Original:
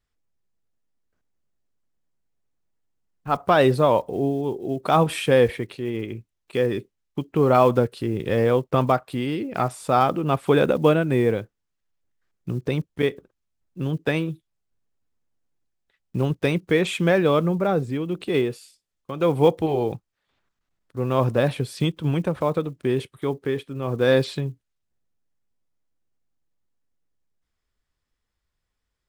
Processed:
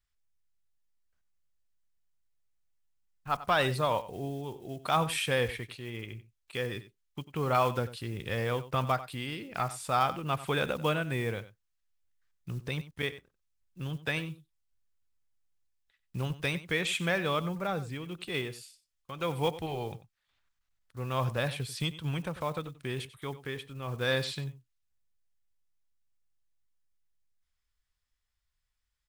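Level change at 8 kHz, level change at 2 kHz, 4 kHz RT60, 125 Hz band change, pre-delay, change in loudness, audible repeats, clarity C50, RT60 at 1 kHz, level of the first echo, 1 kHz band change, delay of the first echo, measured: -1.5 dB, -4.0 dB, no reverb, -9.0 dB, no reverb, -10.0 dB, 1, no reverb, no reverb, -15.5 dB, -7.5 dB, 93 ms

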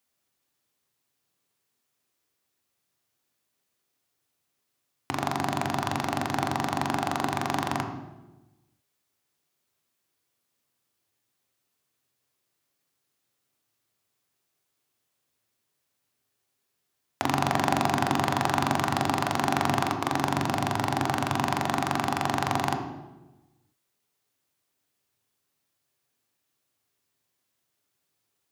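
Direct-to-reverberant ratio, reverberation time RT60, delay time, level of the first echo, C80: 4.5 dB, 1.1 s, no echo, no echo, 9.5 dB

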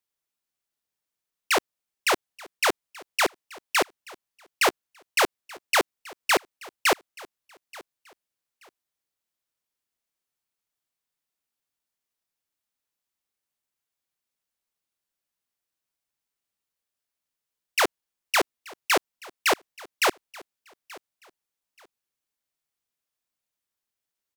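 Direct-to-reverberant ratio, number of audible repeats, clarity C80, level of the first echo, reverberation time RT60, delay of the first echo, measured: no reverb, 2, no reverb, -22.0 dB, no reverb, 880 ms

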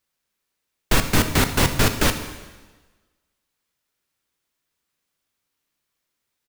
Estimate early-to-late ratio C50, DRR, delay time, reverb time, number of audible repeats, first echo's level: 9.5 dB, 7.5 dB, 87 ms, 1.3 s, 1, -17.5 dB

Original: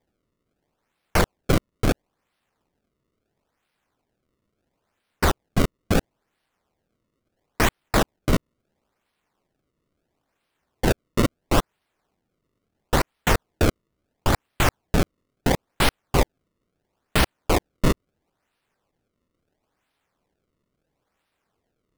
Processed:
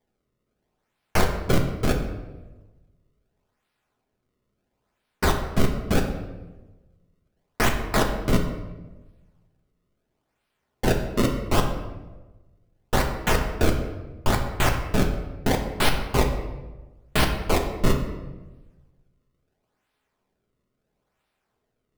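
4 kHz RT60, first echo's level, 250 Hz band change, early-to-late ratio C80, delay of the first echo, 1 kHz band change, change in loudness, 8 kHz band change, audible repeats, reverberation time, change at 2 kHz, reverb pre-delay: 0.75 s, no echo, -0.5 dB, 9.0 dB, no echo, -0.5 dB, -1.0 dB, -1.5 dB, no echo, 1.2 s, -1.0 dB, 5 ms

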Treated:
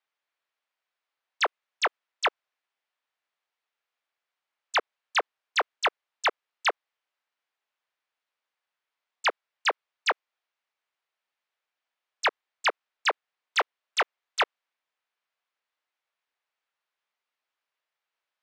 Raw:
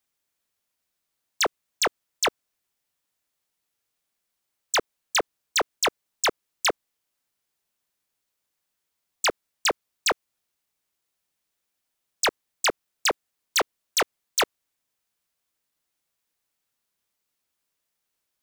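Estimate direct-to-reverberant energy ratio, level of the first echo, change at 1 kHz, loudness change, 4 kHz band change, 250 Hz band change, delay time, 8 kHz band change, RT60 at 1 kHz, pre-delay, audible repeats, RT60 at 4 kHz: no reverb, no echo, +0.5 dB, -2.5 dB, -4.5 dB, -11.0 dB, no echo, -15.0 dB, no reverb, no reverb, no echo, no reverb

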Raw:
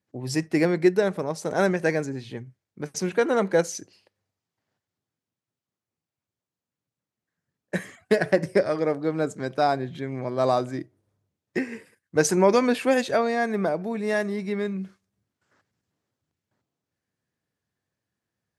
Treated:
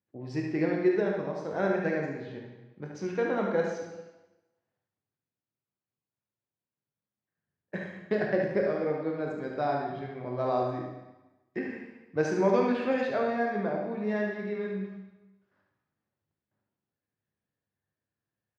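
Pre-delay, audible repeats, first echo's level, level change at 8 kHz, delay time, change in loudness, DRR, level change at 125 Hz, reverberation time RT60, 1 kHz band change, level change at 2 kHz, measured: 17 ms, 1, -5.5 dB, under -20 dB, 72 ms, -5.5 dB, -1.0 dB, -5.5 dB, 1.1 s, -5.5 dB, -6.0 dB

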